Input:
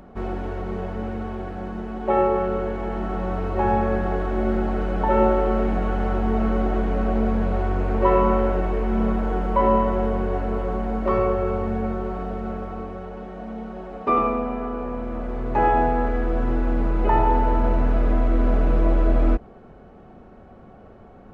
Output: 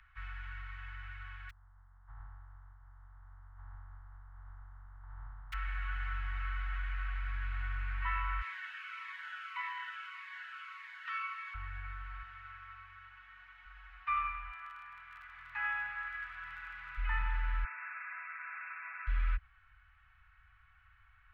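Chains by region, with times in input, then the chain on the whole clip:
1.49–5.52 spectral contrast lowered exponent 0.15 + inverse Chebyshev low-pass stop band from 2300 Hz, stop band 60 dB
8.41–11.54 steep high-pass 920 Hz + high shelf 2400 Hz +10 dB + cascading phaser falling 1.7 Hz
12.22–13.65 HPF 97 Hz + notch 760 Hz, Q 14
14.5–16.96 HPF 180 Hz + crackle 32/s -35 dBFS
17.64–19.07 brick-wall FIR band-pass 620–2700 Hz + tilt +1.5 dB/oct
whole clip: inverse Chebyshev band-stop 220–560 Hz, stop band 70 dB; three-band isolator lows -14 dB, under 160 Hz, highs -23 dB, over 2800 Hz; gain +1 dB

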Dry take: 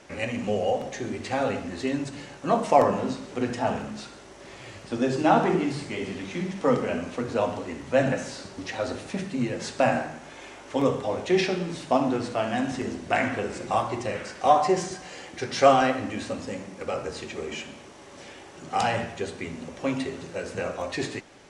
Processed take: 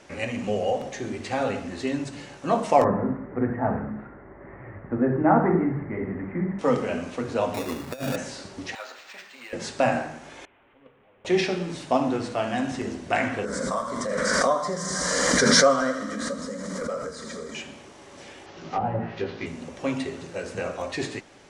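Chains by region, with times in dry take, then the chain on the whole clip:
2.84–6.59 Chebyshev low-pass 2000 Hz, order 5 + low shelf 270 Hz +6.5 dB
7.54–8.16 low shelf 84 Hz -5 dB + negative-ratio compressor -27 dBFS, ratio -0.5 + sample-rate reducer 3100 Hz
8.75–9.53 HPF 1200 Hz + decimation joined by straight lines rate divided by 4×
10.45–11.25 delta modulation 16 kbps, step -19.5 dBFS + gate -15 dBFS, range -34 dB
13.45–17.55 fixed phaser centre 530 Hz, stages 8 + thin delay 81 ms, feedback 75%, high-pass 1800 Hz, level -7.5 dB + backwards sustainer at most 20 dB/s
18.46–19.46 CVSD 32 kbps + treble ducked by the level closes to 730 Hz, closed at -22 dBFS + doubler 18 ms -3 dB
whole clip: dry

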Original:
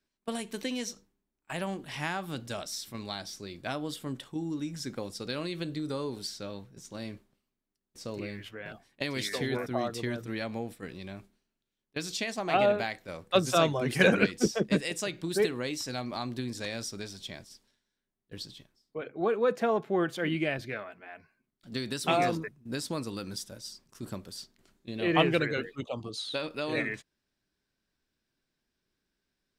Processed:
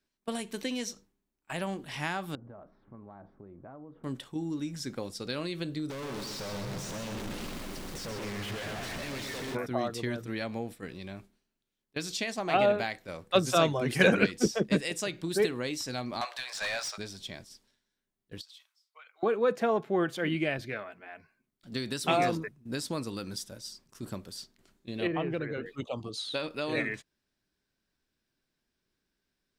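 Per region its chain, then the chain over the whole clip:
2.35–4.04 LPF 1200 Hz 24 dB/oct + compressor 5:1, threshold -45 dBFS
5.9–9.55 infinite clipping + high shelf 8000 Hz -10.5 dB + feedback echo 0.128 s, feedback 57%, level -6 dB
16.21–16.98 elliptic high-pass 620 Hz, stop band 60 dB + overdrive pedal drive 20 dB, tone 3300 Hz, clips at -22.5 dBFS
18.41–19.23 HPF 1100 Hz 24 dB/oct + bell 1700 Hz -7.5 dB 0.23 oct + compressor 5:1, threshold -48 dBFS
25.07–25.66 LPF 1100 Hz 6 dB/oct + compressor 2:1, threshold -32 dBFS
whole clip: dry

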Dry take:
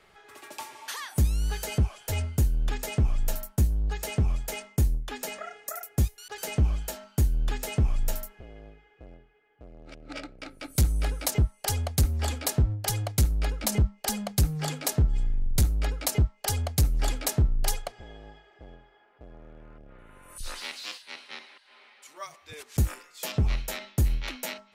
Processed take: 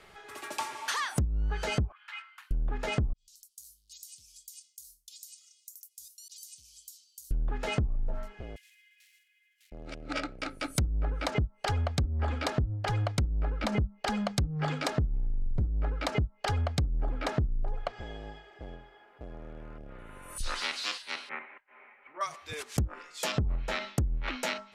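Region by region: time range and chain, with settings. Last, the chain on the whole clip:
1.92–2.51 steep high-pass 1100 Hz 48 dB/oct + air absorption 500 m
3.13–7.31 inverse Chebyshev high-pass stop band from 1800 Hz, stop band 50 dB + compressor 5:1, threshold -48 dBFS
8.56–9.72 block floating point 5-bit + steep high-pass 1900 Hz 48 dB/oct
21.29–22.21 elliptic low-pass 2300 Hz, stop band 60 dB + expander -56 dBFS
whole clip: treble ducked by the level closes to 430 Hz, closed at -19 dBFS; dynamic EQ 1300 Hz, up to +5 dB, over -52 dBFS, Q 1.8; compressor 6:1, threshold -30 dBFS; gain +4 dB

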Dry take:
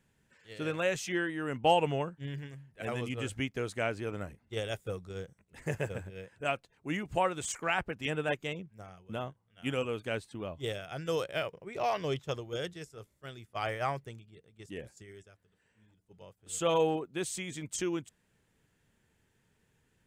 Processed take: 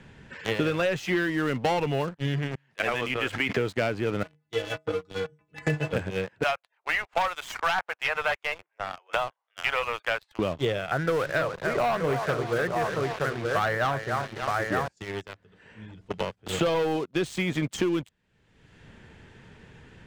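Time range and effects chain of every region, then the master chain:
2.55–3.57 HPF 1400 Hz 6 dB/oct + sustainer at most 38 dB/s
4.23–5.93 HPF 60 Hz 24 dB/oct + metallic resonator 150 Hz, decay 0.24 s, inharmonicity 0.008
6.43–10.39 self-modulated delay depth 0.14 ms + inverse Chebyshev high-pass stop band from 200 Hz, stop band 60 dB
10.91–14.88 resonant high shelf 2300 Hz -11 dB, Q 3 + echo 0.922 s -9 dB + lo-fi delay 0.291 s, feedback 35%, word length 8-bit, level -9.5 dB
whole clip: LPF 3800 Hz 12 dB/oct; sample leveller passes 3; three-band squash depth 100%; gain -2 dB

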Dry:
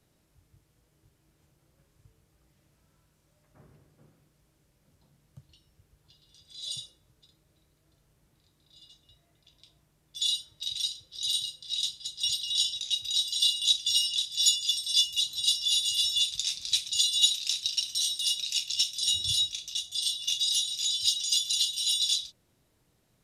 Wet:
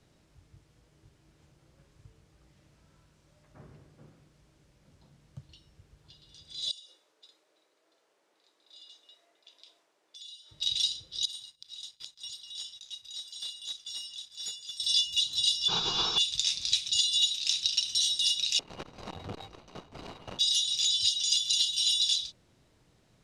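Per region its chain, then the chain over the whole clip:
6.71–10.51 HPF 400 Hz 24 dB/oct + compressor 5:1, threshold -52 dBFS + mismatched tape noise reduction decoder only
11.25–14.8 high shelf 6900 Hz +11.5 dB + sample leveller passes 2 + flipped gate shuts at -23 dBFS, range -28 dB
15.68–16.18 CVSD 32 kbps + fixed phaser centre 390 Hz, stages 8
18.59–20.39 median filter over 25 samples + high shelf 2400 Hz -10 dB + core saturation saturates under 510 Hz
whole clip: LPF 7000 Hz 12 dB/oct; compressor 6:1, threshold -28 dBFS; gain +5 dB

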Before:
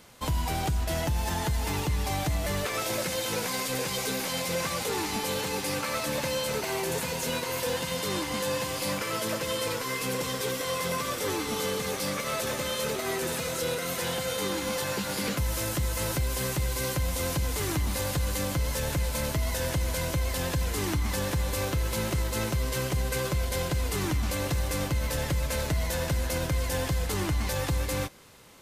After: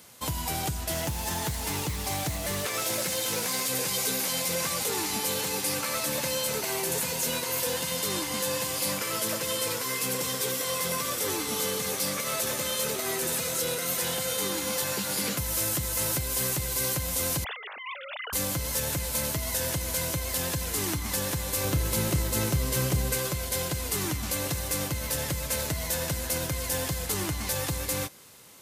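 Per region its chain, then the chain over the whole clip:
0.91–3.68 companded quantiser 6-bit + Doppler distortion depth 0.16 ms
17.44–18.33 sine-wave speech + HPF 1000 Hz + negative-ratio compressor -38 dBFS
21.64–23.15 low shelf 450 Hz +6.5 dB + doubler 30 ms -13 dB
whole clip: HPF 78 Hz; high shelf 5400 Hz +11 dB; gain -2 dB

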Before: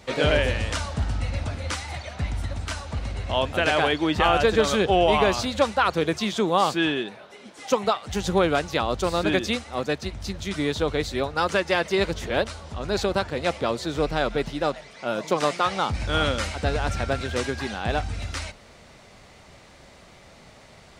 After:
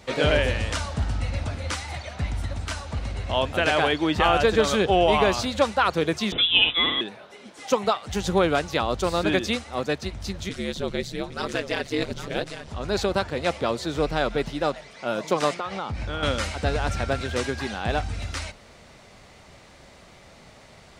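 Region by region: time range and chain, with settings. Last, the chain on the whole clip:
6.32–7.01 comb 5.3 ms, depth 39% + upward compressor, threshold -23 dBFS + inverted band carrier 3700 Hz
10.49–12.68 bell 950 Hz -6.5 dB 1.3 oct + echo 0.81 s -11 dB + ring modulator 72 Hz
15.54–16.23 LPF 3300 Hz 6 dB/oct + compressor 4:1, threshold -26 dBFS
whole clip: dry

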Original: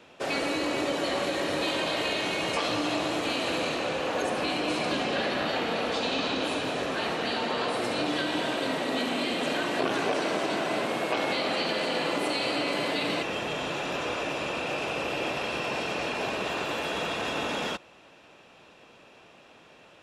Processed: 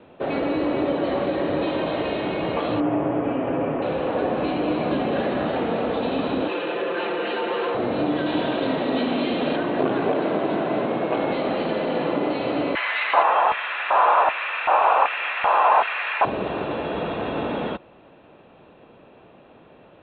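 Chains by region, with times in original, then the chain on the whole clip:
2.8–3.82 running mean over 11 samples + comb 7.3 ms, depth 41%
6.48–7.75 speaker cabinet 390–9100 Hz, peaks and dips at 420 Hz +6 dB, 700 Hz -6 dB, 1600 Hz +4 dB, 2700 Hz +6 dB, 5100 Hz -4 dB + comb 5.8 ms, depth 88% + core saturation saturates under 1500 Hz
8.26–9.56 high shelf 3500 Hz +12 dB + notch 2000 Hz, Q 27
12.75–16.25 EQ curve 260 Hz 0 dB, 1100 Hz +13 dB, 11000 Hz -9 dB + LFO high-pass square 1.3 Hz 880–2000 Hz + doubler 15 ms -13.5 dB
whole clip: steep low-pass 4100 Hz 96 dB/oct; tilt shelf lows +8.5 dB, about 1400 Hz

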